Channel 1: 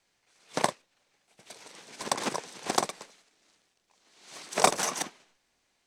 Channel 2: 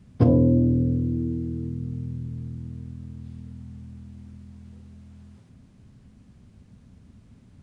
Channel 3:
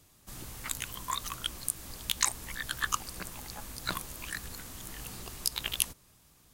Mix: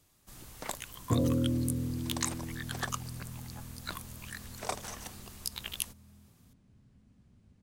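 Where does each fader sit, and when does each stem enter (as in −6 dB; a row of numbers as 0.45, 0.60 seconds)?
−14.0, −10.5, −6.0 decibels; 0.05, 0.90, 0.00 seconds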